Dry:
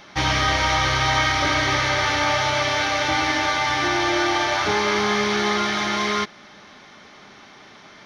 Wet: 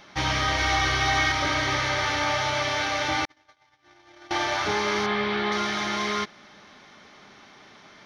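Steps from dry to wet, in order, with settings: 0.58–1.32 s: comb 2.7 ms, depth 65%; 3.25–4.31 s: gate -16 dBFS, range -57 dB; 5.06–5.52 s: low-pass 3.9 kHz 24 dB/octave; trim -4.5 dB

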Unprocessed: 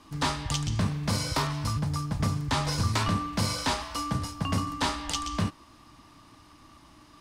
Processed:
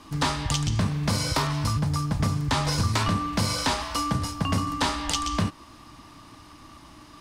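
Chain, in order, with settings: compression 2:1, threshold -29 dBFS, peak gain reduction 4.5 dB; trim +6 dB

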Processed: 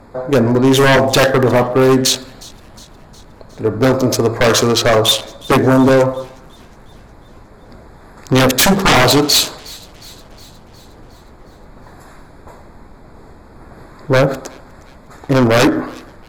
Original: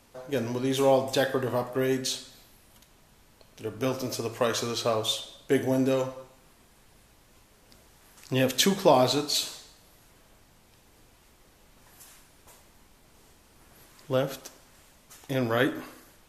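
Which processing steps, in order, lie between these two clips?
local Wiener filter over 15 samples; sine folder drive 16 dB, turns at -6.5 dBFS; feedback echo behind a high-pass 361 ms, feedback 58%, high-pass 2.4 kHz, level -21.5 dB

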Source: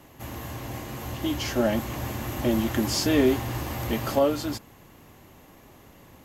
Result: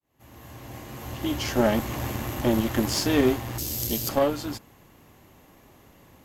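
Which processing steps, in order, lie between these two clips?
fade-in on the opening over 2.08 s; 3.58–4.09 s: FFT filter 420 Hz 0 dB, 1.2 kHz -20 dB, 5.1 kHz +14 dB; Chebyshev shaper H 2 -17 dB, 3 -19 dB, 6 -27 dB, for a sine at -10 dBFS; gain riding 2 s; trim +2 dB

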